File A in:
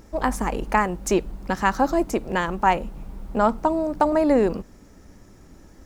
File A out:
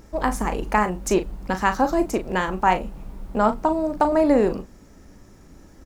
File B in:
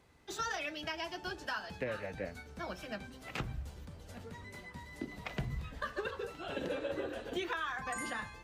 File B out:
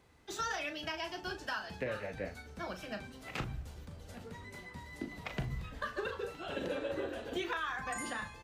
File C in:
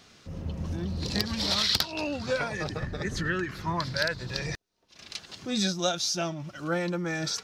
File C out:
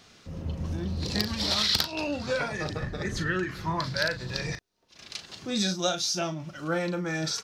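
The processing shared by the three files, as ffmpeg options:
-filter_complex "[0:a]asplit=2[link_01][link_02];[link_02]adelay=38,volume=-9.5dB[link_03];[link_01][link_03]amix=inputs=2:normalize=0"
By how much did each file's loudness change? +0.5, +0.5, +0.5 LU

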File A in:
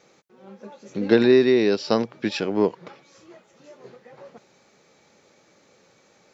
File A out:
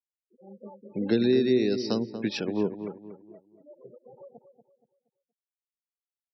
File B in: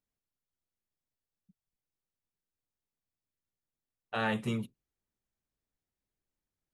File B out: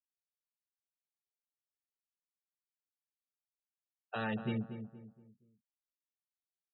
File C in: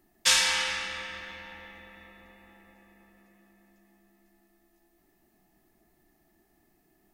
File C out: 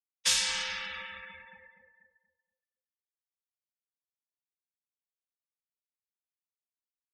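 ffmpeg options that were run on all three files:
-filter_complex "[0:a]acrossover=split=360|3000[link_01][link_02][link_03];[link_02]acompressor=threshold=-33dB:ratio=4[link_04];[link_01][link_04][link_03]amix=inputs=3:normalize=0,afftfilt=real='re*gte(hypot(re,im),0.0158)':imag='im*gte(hypot(re,im),0.0158)':win_size=1024:overlap=0.75,asplit=2[link_05][link_06];[link_06]adelay=236,lowpass=frequency=1300:poles=1,volume=-9dB,asplit=2[link_07][link_08];[link_08]adelay=236,lowpass=frequency=1300:poles=1,volume=0.38,asplit=2[link_09][link_10];[link_10]adelay=236,lowpass=frequency=1300:poles=1,volume=0.38,asplit=2[link_11][link_12];[link_12]adelay=236,lowpass=frequency=1300:poles=1,volume=0.38[link_13];[link_05][link_07][link_09][link_11][link_13]amix=inputs=5:normalize=0,volume=-3dB"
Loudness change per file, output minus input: −6.5, −5.0, −3.5 LU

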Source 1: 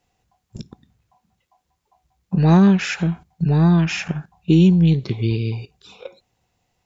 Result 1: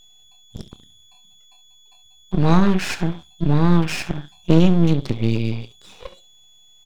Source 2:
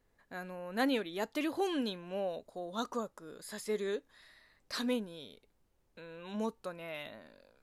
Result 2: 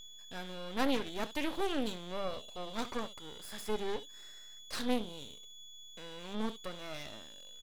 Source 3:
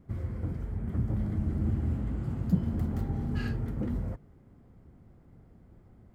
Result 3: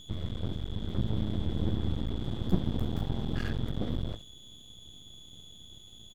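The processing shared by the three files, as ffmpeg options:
-af "aeval=exprs='val(0)+0.00398*sin(2*PI*3400*n/s)':channel_layout=same,aecho=1:1:28|69:0.158|0.158,aeval=exprs='max(val(0),0)':channel_layout=same,volume=3dB"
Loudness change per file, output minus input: −2.0, −1.5, −1.5 LU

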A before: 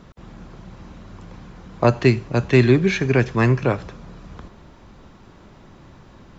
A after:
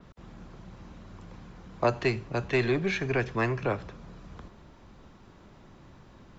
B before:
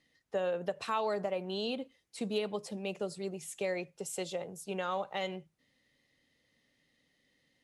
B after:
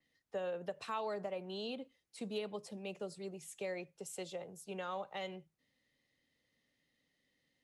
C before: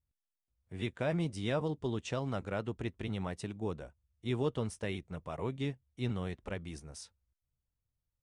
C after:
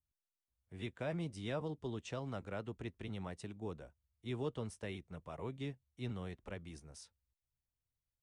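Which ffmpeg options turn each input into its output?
-filter_complex "[0:a]acrossover=split=360|620|3800[link_01][link_02][link_03][link_04];[link_01]asoftclip=type=tanh:threshold=-23.5dB[link_05];[link_05][link_02][link_03][link_04]amix=inputs=4:normalize=0,adynamicequalizer=threshold=0.00447:dfrequency=5000:dqfactor=0.7:tfrequency=5000:tqfactor=0.7:attack=5:release=100:ratio=0.375:range=2.5:mode=cutabove:tftype=highshelf,volume=-6.5dB"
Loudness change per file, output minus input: −10.0, −6.5, −6.5 LU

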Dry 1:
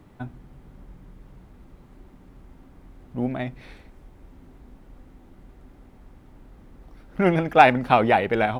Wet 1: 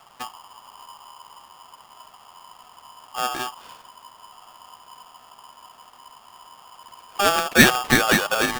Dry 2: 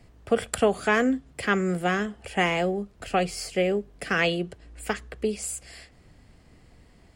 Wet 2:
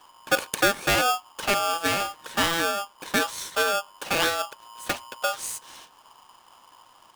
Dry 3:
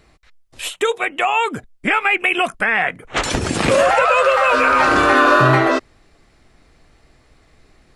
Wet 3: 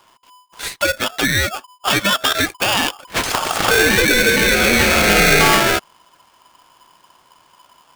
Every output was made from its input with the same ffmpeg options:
-af "aeval=exprs='val(0)*sgn(sin(2*PI*1000*n/s))':channel_layout=same"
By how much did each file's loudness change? +1.5, +1.5, +1.0 LU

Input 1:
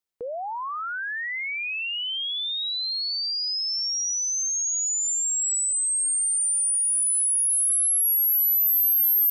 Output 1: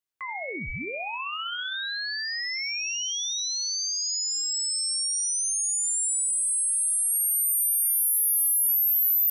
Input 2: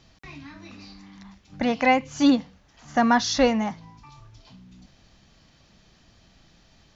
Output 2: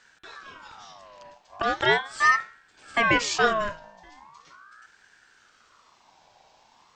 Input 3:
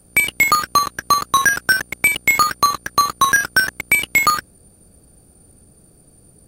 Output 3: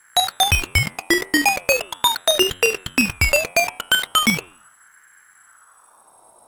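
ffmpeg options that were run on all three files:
-af "bandreject=frequency=89.73:width_type=h:width=4,bandreject=frequency=179.46:width_type=h:width=4,bandreject=frequency=269.19:width_type=h:width=4,bandreject=frequency=358.92:width_type=h:width=4,bandreject=frequency=448.65:width_type=h:width=4,bandreject=frequency=538.38:width_type=h:width=4,bandreject=frequency=628.11:width_type=h:width=4,bandreject=frequency=717.84:width_type=h:width=4,bandreject=frequency=807.57:width_type=h:width=4,bandreject=frequency=897.3:width_type=h:width=4,bandreject=frequency=987.03:width_type=h:width=4,bandreject=frequency=1076.76:width_type=h:width=4,bandreject=frequency=1166.49:width_type=h:width=4,bandreject=frequency=1256.22:width_type=h:width=4,bandreject=frequency=1345.95:width_type=h:width=4,bandreject=frequency=1435.68:width_type=h:width=4,bandreject=frequency=1525.41:width_type=h:width=4,bandreject=frequency=1615.14:width_type=h:width=4,bandreject=frequency=1704.87:width_type=h:width=4,bandreject=frequency=1794.6:width_type=h:width=4,bandreject=frequency=1884.33:width_type=h:width=4,bandreject=frequency=1974.06:width_type=h:width=4,bandreject=frequency=2063.79:width_type=h:width=4,bandreject=frequency=2153.52:width_type=h:width=4,bandreject=frequency=2243.25:width_type=h:width=4,bandreject=frequency=2332.98:width_type=h:width=4,bandreject=frequency=2422.71:width_type=h:width=4,bandreject=frequency=2512.44:width_type=h:width=4,aeval=exprs='val(0)*sin(2*PI*1200*n/s+1200*0.35/0.39*sin(2*PI*0.39*n/s))':channel_layout=same,volume=1dB"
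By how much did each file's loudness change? −2.0, −1.0, −2.0 LU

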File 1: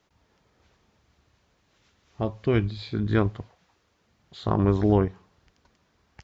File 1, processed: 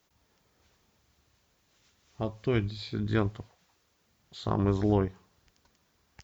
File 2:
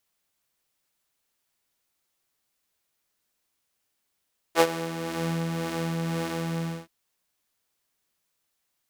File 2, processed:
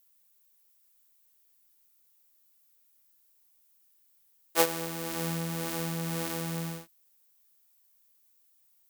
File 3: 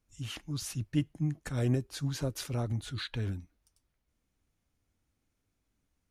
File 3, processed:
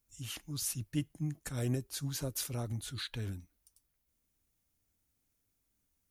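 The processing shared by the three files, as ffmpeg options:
-af "aemphasis=mode=production:type=50fm,volume=-4.5dB"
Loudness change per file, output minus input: −5.0, −2.5, −3.0 LU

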